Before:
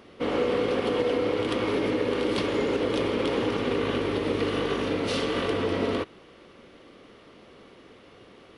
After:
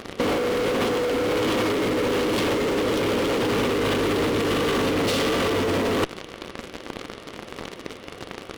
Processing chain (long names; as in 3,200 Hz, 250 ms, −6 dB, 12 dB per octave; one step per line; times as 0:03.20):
in parallel at −4 dB: fuzz pedal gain 38 dB, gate −44 dBFS
on the sum: compressor whose output falls as the input rises −24 dBFS, ratio −1
level +1.5 dB